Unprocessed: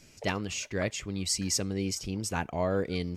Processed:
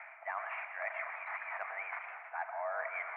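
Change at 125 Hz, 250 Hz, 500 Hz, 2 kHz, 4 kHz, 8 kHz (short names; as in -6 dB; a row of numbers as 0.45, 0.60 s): under -40 dB, under -40 dB, -10.5 dB, +1.0 dB, under -30 dB, under -40 dB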